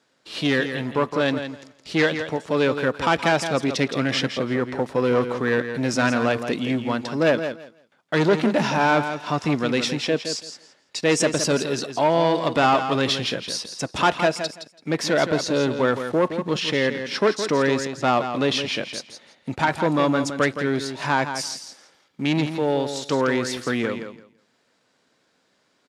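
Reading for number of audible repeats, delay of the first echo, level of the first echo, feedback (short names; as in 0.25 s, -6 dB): 2, 0.167 s, -9.0 dB, 18%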